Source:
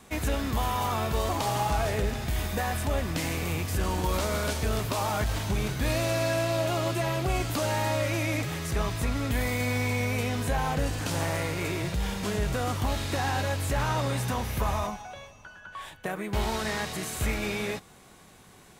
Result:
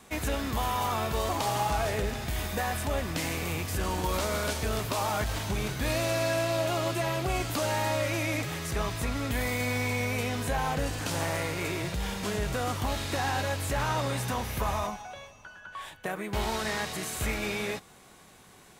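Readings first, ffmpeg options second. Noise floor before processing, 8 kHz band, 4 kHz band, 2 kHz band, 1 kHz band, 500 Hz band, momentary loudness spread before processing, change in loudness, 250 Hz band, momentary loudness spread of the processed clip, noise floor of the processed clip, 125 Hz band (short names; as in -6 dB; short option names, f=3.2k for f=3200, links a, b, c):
-53 dBFS, 0.0 dB, 0.0 dB, 0.0 dB, -0.5 dB, -1.0 dB, 4 LU, -1.5 dB, -2.0 dB, 5 LU, -54 dBFS, -3.5 dB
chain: -af "lowshelf=f=270:g=-4"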